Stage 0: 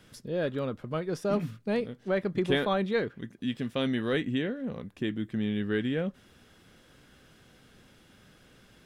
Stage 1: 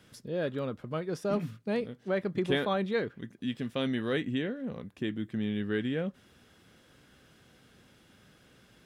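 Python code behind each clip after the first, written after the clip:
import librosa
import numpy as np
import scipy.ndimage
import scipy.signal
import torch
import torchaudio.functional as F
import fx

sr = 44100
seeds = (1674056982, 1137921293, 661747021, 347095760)

y = scipy.signal.sosfilt(scipy.signal.butter(2, 48.0, 'highpass', fs=sr, output='sos'), x)
y = y * librosa.db_to_amplitude(-2.0)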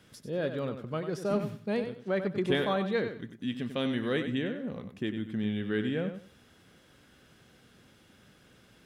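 y = fx.echo_feedback(x, sr, ms=94, feedback_pct=22, wet_db=-9.0)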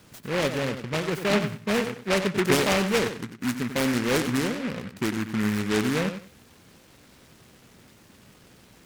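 y = fx.noise_mod_delay(x, sr, seeds[0], noise_hz=1600.0, depth_ms=0.18)
y = y * librosa.db_to_amplitude(6.0)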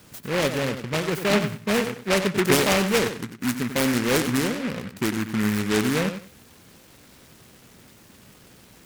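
y = fx.high_shelf(x, sr, hz=9000.0, db=6.5)
y = y * librosa.db_to_amplitude(2.0)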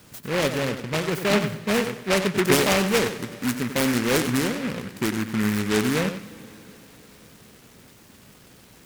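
y = fx.rev_plate(x, sr, seeds[1], rt60_s=4.5, hf_ratio=1.0, predelay_ms=0, drr_db=17.0)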